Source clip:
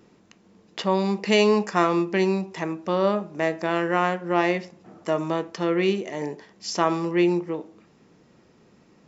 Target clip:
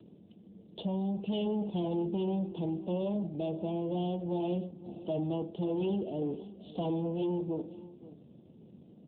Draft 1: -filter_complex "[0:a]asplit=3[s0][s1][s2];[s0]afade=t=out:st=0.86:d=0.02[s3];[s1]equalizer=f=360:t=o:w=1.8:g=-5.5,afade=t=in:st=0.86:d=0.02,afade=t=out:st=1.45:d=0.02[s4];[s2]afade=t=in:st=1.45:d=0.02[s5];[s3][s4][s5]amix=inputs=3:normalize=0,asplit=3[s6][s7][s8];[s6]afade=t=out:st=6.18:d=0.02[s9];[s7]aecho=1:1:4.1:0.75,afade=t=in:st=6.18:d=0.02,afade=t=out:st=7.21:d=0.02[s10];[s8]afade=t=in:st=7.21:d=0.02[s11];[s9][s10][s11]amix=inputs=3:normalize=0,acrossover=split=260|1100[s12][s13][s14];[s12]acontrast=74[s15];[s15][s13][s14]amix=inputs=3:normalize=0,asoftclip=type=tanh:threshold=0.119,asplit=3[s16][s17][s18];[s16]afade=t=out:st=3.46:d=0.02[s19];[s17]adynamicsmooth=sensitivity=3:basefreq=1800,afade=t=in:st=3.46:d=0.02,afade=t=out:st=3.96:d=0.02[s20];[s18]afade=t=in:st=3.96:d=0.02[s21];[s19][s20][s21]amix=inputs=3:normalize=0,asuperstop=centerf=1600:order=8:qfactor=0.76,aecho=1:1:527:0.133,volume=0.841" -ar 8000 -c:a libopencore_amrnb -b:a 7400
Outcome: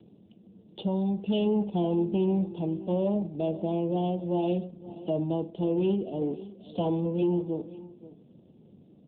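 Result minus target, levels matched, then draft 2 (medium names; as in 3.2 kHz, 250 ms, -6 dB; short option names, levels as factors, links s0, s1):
saturation: distortion -6 dB
-filter_complex "[0:a]asplit=3[s0][s1][s2];[s0]afade=t=out:st=0.86:d=0.02[s3];[s1]equalizer=f=360:t=o:w=1.8:g=-5.5,afade=t=in:st=0.86:d=0.02,afade=t=out:st=1.45:d=0.02[s4];[s2]afade=t=in:st=1.45:d=0.02[s5];[s3][s4][s5]amix=inputs=3:normalize=0,asplit=3[s6][s7][s8];[s6]afade=t=out:st=6.18:d=0.02[s9];[s7]aecho=1:1:4.1:0.75,afade=t=in:st=6.18:d=0.02,afade=t=out:st=7.21:d=0.02[s10];[s8]afade=t=in:st=7.21:d=0.02[s11];[s9][s10][s11]amix=inputs=3:normalize=0,acrossover=split=260|1100[s12][s13][s14];[s12]acontrast=74[s15];[s15][s13][s14]amix=inputs=3:normalize=0,asoftclip=type=tanh:threshold=0.0473,asplit=3[s16][s17][s18];[s16]afade=t=out:st=3.46:d=0.02[s19];[s17]adynamicsmooth=sensitivity=3:basefreq=1800,afade=t=in:st=3.46:d=0.02,afade=t=out:st=3.96:d=0.02[s20];[s18]afade=t=in:st=3.96:d=0.02[s21];[s19][s20][s21]amix=inputs=3:normalize=0,asuperstop=centerf=1600:order=8:qfactor=0.76,aecho=1:1:527:0.133,volume=0.841" -ar 8000 -c:a libopencore_amrnb -b:a 7400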